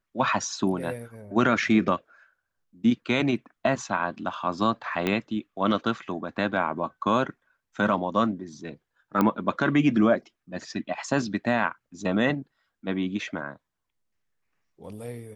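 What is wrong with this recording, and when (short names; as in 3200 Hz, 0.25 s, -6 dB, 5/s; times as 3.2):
5.07 pop -12 dBFS
9.21 pop -11 dBFS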